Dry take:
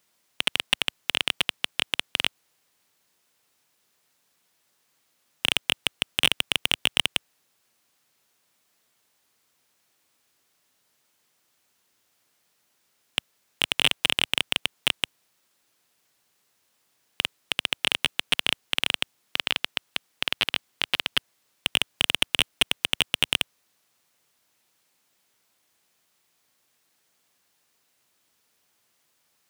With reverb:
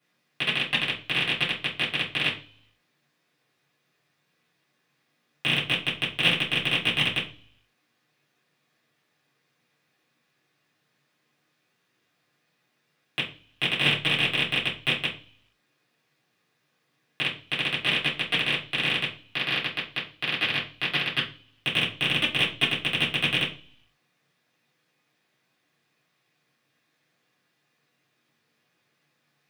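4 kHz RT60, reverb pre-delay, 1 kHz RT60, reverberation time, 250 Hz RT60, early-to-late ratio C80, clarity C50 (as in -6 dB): 0.60 s, 3 ms, 0.40 s, 0.40 s, 0.65 s, 15.0 dB, 8.0 dB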